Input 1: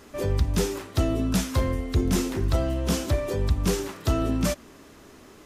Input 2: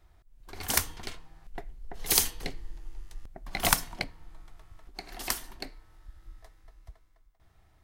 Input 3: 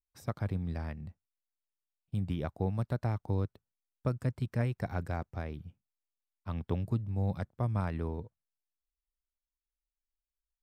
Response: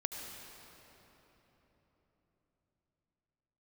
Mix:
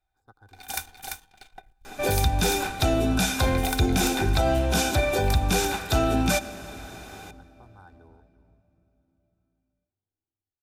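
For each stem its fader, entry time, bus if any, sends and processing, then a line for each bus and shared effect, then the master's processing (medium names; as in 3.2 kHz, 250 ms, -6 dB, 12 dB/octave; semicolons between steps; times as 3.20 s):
+0.5 dB, 1.85 s, send -15.5 dB, no echo send, none
-19.0 dB, 0.00 s, no send, echo send -4.5 dB, waveshaping leveller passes 2
-18.0 dB, 0.00 s, send -19 dB, echo send -15.5 dB, local Wiener filter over 15 samples; static phaser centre 630 Hz, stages 6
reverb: on, RT60 4.1 s, pre-delay 68 ms
echo: delay 342 ms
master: treble shelf 3.5 kHz +7 dB; small resonant body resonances 780/1500/2400/3600 Hz, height 18 dB, ringing for 50 ms; peak limiter -13 dBFS, peak gain reduction 6 dB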